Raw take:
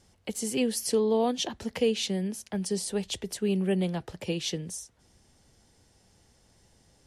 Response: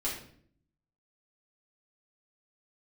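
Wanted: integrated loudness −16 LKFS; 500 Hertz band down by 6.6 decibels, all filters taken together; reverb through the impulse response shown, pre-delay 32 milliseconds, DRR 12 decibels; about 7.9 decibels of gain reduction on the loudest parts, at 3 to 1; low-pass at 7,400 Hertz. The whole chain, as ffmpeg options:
-filter_complex "[0:a]lowpass=7400,equalizer=frequency=500:width_type=o:gain=-8,acompressor=threshold=-36dB:ratio=3,asplit=2[link_01][link_02];[1:a]atrim=start_sample=2205,adelay=32[link_03];[link_02][link_03]afir=irnorm=-1:irlink=0,volume=-16.5dB[link_04];[link_01][link_04]amix=inputs=2:normalize=0,volume=22dB"

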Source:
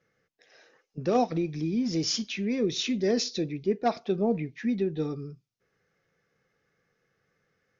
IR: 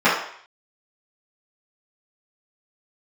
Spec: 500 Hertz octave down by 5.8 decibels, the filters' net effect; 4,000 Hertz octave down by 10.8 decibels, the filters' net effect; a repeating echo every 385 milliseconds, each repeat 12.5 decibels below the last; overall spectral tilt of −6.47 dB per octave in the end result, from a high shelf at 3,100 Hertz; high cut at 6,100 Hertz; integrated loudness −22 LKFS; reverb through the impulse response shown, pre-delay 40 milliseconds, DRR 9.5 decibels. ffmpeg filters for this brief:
-filter_complex "[0:a]lowpass=6100,equalizer=frequency=500:width_type=o:gain=-7.5,highshelf=frequency=3100:gain=-4.5,equalizer=frequency=4000:width_type=o:gain=-9,aecho=1:1:385|770|1155:0.237|0.0569|0.0137,asplit=2[link_01][link_02];[1:a]atrim=start_sample=2205,adelay=40[link_03];[link_02][link_03]afir=irnorm=-1:irlink=0,volume=-33dB[link_04];[link_01][link_04]amix=inputs=2:normalize=0,volume=9.5dB"

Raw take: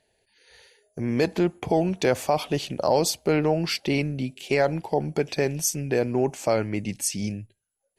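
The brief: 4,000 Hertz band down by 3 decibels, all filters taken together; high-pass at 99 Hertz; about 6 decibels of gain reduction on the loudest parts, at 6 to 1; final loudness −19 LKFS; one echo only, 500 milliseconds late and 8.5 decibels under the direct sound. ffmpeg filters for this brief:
ffmpeg -i in.wav -af "highpass=99,equalizer=frequency=4000:width_type=o:gain=-4,acompressor=threshold=-23dB:ratio=6,aecho=1:1:500:0.376,volume=10dB" out.wav

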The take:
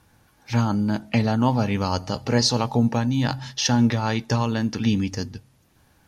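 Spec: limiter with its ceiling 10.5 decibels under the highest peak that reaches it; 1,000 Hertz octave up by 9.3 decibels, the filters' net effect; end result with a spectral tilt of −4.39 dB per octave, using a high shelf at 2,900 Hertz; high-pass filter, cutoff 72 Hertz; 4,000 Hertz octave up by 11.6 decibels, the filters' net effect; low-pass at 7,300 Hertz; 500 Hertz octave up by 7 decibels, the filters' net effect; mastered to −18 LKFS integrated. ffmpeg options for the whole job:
ffmpeg -i in.wav -af "highpass=72,lowpass=7300,equalizer=frequency=500:width_type=o:gain=5.5,equalizer=frequency=1000:width_type=o:gain=8.5,highshelf=frequency=2900:gain=7,equalizer=frequency=4000:width_type=o:gain=8.5,volume=2dB,alimiter=limit=-4.5dB:level=0:latency=1" out.wav

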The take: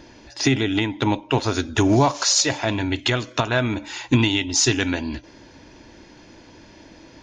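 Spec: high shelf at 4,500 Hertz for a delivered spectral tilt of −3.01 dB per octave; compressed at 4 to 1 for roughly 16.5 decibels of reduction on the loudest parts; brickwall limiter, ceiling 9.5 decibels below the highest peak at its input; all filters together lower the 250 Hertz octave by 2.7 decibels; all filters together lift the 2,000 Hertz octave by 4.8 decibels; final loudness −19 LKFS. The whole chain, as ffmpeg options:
ffmpeg -i in.wav -af "equalizer=frequency=250:width_type=o:gain=-3.5,equalizer=frequency=2000:width_type=o:gain=4.5,highshelf=frequency=4500:gain=7.5,acompressor=threshold=-31dB:ratio=4,volume=16dB,alimiter=limit=-6dB:level=0:latency=1" out.wav

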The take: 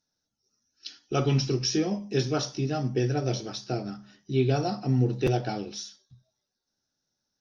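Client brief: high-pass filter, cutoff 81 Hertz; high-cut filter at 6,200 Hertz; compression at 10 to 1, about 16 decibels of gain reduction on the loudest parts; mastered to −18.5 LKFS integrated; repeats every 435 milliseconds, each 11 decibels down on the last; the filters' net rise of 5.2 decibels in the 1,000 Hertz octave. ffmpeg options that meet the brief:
ffmpeg -i in.wav -af "highpass=81,lowpass=6200,equalizer=frequency=1000:width_type=o:gain=8.5,acompressor=threshold=-36dB:ratio=10,aecho=1:1:435|870|1305:0.282|0.0789|0.0221,volume=22.5dB" out.wav

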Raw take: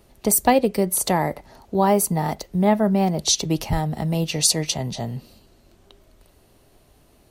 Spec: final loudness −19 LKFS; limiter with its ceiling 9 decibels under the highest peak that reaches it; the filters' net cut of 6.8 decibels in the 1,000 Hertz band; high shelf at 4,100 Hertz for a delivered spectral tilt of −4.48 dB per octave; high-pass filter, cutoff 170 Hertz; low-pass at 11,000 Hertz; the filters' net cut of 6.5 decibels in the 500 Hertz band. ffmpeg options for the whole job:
ffmpeg -i in.wav -af "highpass=170,lowpass=11000,equalizer=frequency=500:width_type=o:gain=-6.5,equalizer=frequency=1000:width_type=o:gain=-6,highshelf=frequency=4100:gain=-5,volume=9dB,alimiter=limit=-8dB:level=0:latency=1" out.wav

